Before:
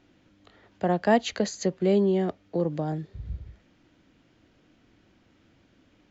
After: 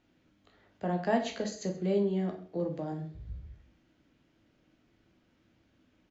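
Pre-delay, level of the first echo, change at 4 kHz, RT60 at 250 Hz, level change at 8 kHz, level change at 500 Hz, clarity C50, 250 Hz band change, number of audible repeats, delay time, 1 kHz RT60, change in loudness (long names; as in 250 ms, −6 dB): 10 ms, −20.0 dB, −7.5 dB, 0.55 s, can't be measured, −7.0 dB, 9.0 dB, −6.0 dB, 1, 131 ms, 0.45 s, −6.5 dB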